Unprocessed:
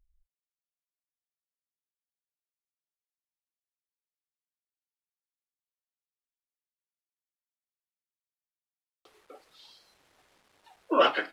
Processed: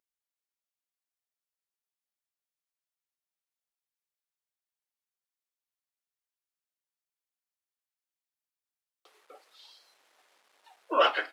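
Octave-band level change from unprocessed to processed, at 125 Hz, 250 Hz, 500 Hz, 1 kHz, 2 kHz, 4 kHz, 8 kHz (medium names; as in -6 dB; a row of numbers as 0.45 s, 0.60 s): under -15 dB, -8.5 dB, -2.0 dB, 0.0 dB, 0.0 dB, 0.0 dB, no reading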